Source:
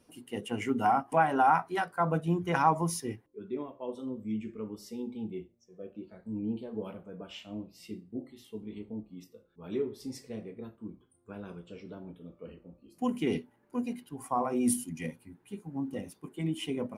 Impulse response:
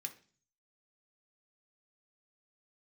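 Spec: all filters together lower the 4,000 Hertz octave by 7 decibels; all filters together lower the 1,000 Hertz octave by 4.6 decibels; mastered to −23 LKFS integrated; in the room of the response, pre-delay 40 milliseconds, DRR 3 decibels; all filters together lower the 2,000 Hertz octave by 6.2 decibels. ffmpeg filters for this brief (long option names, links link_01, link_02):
-filter_complex "[0:a]equalizer=frequency=1000:width_type=o:gain=-5,equalizer=frequency=2000:width_type=o:gain=-5,equalizer=frequency=4000:width_type=o:gain=-8,asplit=2[link_01][link_02];[1:a]atrim=start_sample=2205,adelay=40[link_03];[link_02][link_03]afir=irnorm=-1:irlink=0,volume=0dB[link_04];[link_01][link_04]amix=inputs=2:normalize=0,volume=11dB"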